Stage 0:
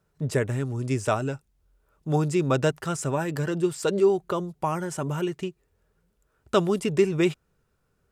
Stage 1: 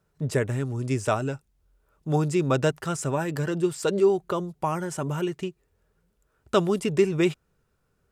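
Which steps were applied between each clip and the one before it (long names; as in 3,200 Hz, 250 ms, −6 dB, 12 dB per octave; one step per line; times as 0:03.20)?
no processing that can be heard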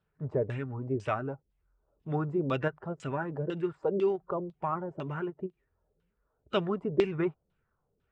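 spectral magnitudes quantised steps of 15 dB
auto-filter low-pass saw down 2 Hz 430–3,500 Hz
every ending faded ahead of time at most 570 dB per second
level −7.5 dB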